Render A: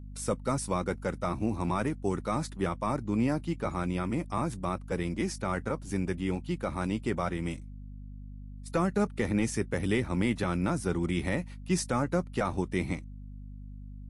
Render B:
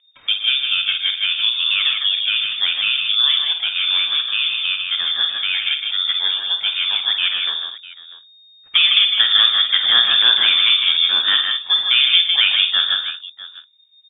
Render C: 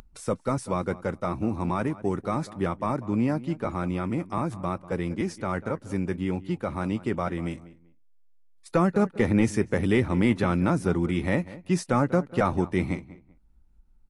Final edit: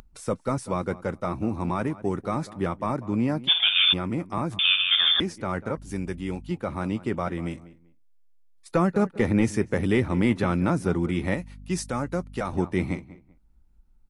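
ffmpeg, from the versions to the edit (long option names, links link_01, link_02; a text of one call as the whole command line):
ffmpeg -i take0.wav -i take1.wav -i take2.wav -filter_complex "[1:a]asplit=2[link_01][link_02];[0:a]asplit=2[link_03][link_04];[2:a]asplit=5[link_05][link_06][link_07][link_08][link_09];[link_05]atrim=end=3.49[link_10];[link_01]atrim=start=3.47:end=3.94[link_11];[link_06]atrim=start=3.92:end=4.592[link_12];[link_02]atrim=start=4.588:end=5.202[link_13];[link_07]atrim=start=5.198:end=5.772[link_14];[link_03]atrim=start=5.768:end=6.512[link_15];[link_08]atrim=start=6.508:end=11.342[link_16];[link_04]atrim=start=11.338:end=12.532[link_17];[link_09]atrim=start=12.528[link_18];[link_10][link_11]acrossfade=duration=0.02:curve1=tri:curve2=tri[link_19];[link_19][link_12]acrossfade=duration=0.02:curve1=tri:curve2=tri[link_20];[link_20][link_13]acrossfade=duration=0.004:curve1=hsin:curve2=hsin[link_21];[link_21][link_14]acrossfade=duration=0.004:curve1=hsin:curve2=hsin[link_22];[link_22][link_15]acrossfade=duration=0.004:curve1=hsin:curve2=hsin[link_23];[link_23][link_16]acrossfade=duration=0.004:curve1=hsin:curve2=hsin[link_24];[link_24][link_17]acrossfade=duration=0.004:curve1=hsin:curve2=hsin[link_25];[link_25][link_18]acrossfade=duration=0.004:curve1=hsin:curve2=hsin" out.wav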